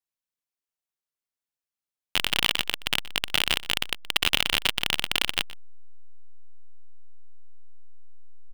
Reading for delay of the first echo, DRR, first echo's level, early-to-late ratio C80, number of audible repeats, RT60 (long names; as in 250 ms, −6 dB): 122 ms, no reverb audible, −19.5 dB, no reverb audible, 1, no reverb audible